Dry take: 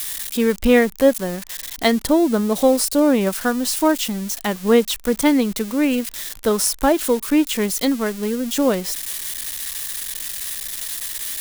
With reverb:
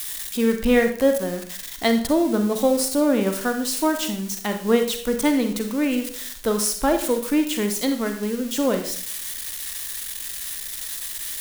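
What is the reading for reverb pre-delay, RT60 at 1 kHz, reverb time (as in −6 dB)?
37 ms, 0.50 s, 0.50 s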